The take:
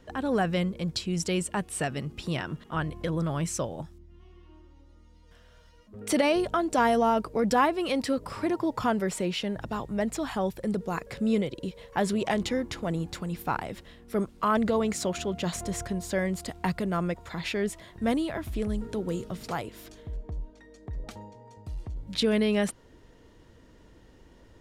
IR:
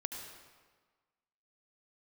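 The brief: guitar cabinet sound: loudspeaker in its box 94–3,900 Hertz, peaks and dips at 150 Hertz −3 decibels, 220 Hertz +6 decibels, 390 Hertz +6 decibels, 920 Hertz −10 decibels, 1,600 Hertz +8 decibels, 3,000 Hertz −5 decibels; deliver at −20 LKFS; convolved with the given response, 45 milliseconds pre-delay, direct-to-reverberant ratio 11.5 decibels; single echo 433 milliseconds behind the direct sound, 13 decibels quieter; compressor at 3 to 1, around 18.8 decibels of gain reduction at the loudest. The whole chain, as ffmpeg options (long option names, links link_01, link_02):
-filter_complex "[0:a]acompressor=threshold=-46dB:ratio=3,aecho=1:1:433:0.224,asplit=2[link_01][link_02];[1:a]atrim=start_sample=2205,adelay=45[link_03];[link_02][link_03]afir=irnorm=-1:irlink=0,volume=-11.5dB[link_04];[link_01][link_04]amix=inputs=2:normalize=0,highpass=94,equalizer=frequency=150:width_type=q:width=4:gain=-3,equalizer=frequency=220:width_type=q:width=4:gain=6,equalizer=frequency=390:width_type=q:width=4:gain=6,equalizer=frequency=920:width_type=q:width=4:gain=-10,equalizer=frequency=1600:width_type=q:width=4:gain=8,equalizer=frequency=3000:width_type=q:width=4:gain=-5,lowpass=frequency=3900:width=0.5412,lowpass=frequency=3900:width=1.3066,volume=22.5dB"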